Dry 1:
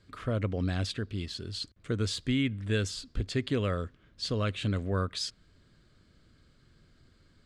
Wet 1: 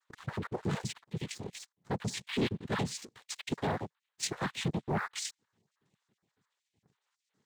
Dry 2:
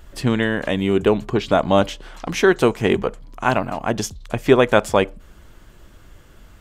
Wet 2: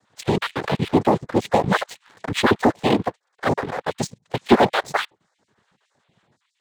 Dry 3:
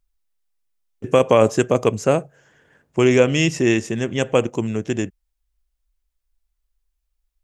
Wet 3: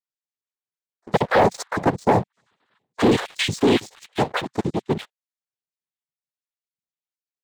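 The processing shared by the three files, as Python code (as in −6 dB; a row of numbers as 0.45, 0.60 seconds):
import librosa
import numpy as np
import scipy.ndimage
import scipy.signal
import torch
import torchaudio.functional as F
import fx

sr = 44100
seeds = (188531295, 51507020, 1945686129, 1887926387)

y = fx.spec_dropout(x, sr, seeds[0], share_pct=57)
y = fx.noise_vocoder(y, sr, seeds[1], bands=6)
y = fx.leveller(y, sr, passes=2)
y = F.gain(torch.from_numpy(y), -5.5).numpy()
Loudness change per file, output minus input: −4.0, −2.0, −3.0 LU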